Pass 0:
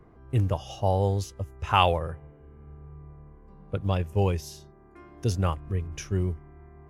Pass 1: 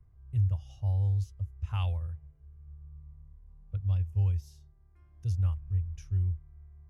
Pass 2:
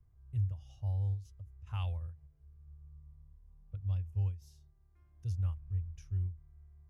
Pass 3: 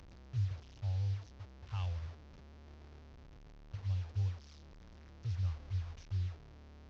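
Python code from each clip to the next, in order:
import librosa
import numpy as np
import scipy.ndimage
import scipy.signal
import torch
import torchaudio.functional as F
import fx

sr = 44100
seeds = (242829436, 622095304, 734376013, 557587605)

y1 = fx.curve_eq(x, sr, hz=(100.0, 250.0, 4800.0), db=(0, -28, -17))
y2 = fx.end_taper(y1, sr, db_per_s=170.0)
y2 = F.gain(torch.from_numpy(y2), -5.5).numpy()
y3 = fx.delta_mod(y2, sr, bps=32000, step_db=-47.0)
y3 = F.gain(torch.from_numpy(y3), -2.0).numpy()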